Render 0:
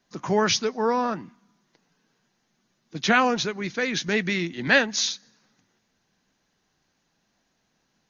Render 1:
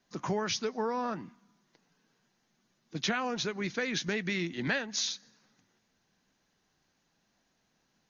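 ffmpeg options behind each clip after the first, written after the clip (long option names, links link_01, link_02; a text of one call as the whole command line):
ffmpeg -i in.wav -af "acompressor=threshold=-25dB:ratio=6,volume=-3dB" out.wav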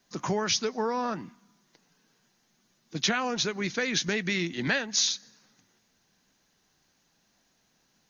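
ffmpeg -i in.wav -af "highshelf=frequency=4900:gain=8,volume=3dB" out.wav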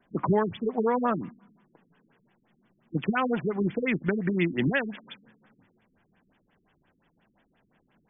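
ffmpeg -i in.wav -filter_complex "[0:a]asplit=2[link_01][link_02];[link_02]alimiter=limit=-20dB:level=0:latency=1:release=104,volume=0dB[link_03];[link_01][link_03]amix=inputs=2:normalize=0,afftfilt=real='re*lt(b*sr/1024,380*pow(3600/380,0.5+0.5*sin(2*PI*5.7*pts/sr)))':imag='im*lt(b*sr/1024,380*pow(3600/380,0.5+0.5*sin(2*PI*5.7*pts/sr)))':win_size=1024:overlap=0.75" out.wav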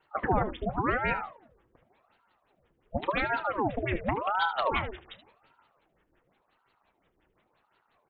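ffmpeg -i in.wav -af "aecho=1:1:30|76:0.158|0.224,aeval=exprs='val(0)*sin(2*PI*650*n/s+650*0.8/0.9*sin(2*PI*0.9*n/s))':channel_layout=same" out.wav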